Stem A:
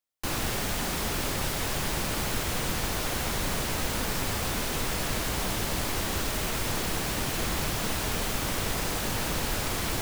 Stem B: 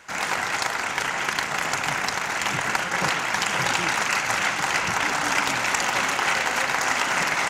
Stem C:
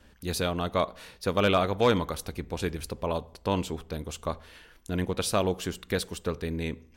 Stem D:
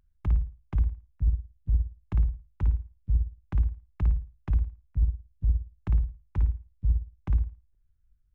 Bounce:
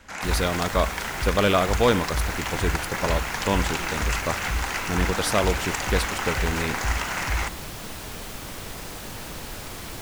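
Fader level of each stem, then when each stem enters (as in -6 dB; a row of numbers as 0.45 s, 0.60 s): -6.5 dB, -6.0 dB, +3.0 dB, -3.5 dB; 0.00 s, 0.00 s, 0.00 s, 0.00 s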